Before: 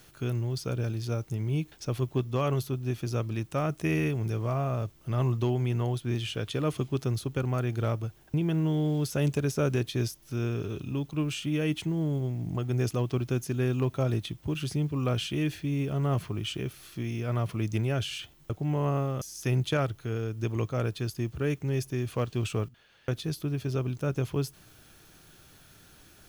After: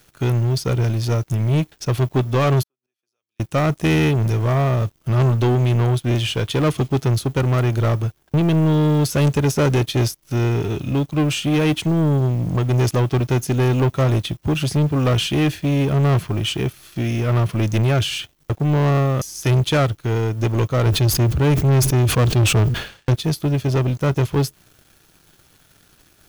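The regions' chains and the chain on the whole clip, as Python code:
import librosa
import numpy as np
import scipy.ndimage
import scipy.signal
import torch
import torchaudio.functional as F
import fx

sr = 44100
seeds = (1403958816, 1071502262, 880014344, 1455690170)

y = fx.chain(x, sr, fx.highpass(hz=570.0, slope=12),
    fx.gate_flip(shuts_db=-42.0, range_db=-34),
    fx.band_squash(depth_pct=100), at=(2.63, 3.4))
y = fx.chain(y, sr, fx.low_shelf(hz=210.0, db=7.5),
    fx.sustainer(db_per_s=86.0), at=(20.86, 23.15))
y = fx.leveller(y, sr, passes=3)
y = fx.upward_expand(y, sr, threshold_db=-38.0, expansion=1.5)
y = F.gain(torch.from_numpy(y), 5.0).numpy()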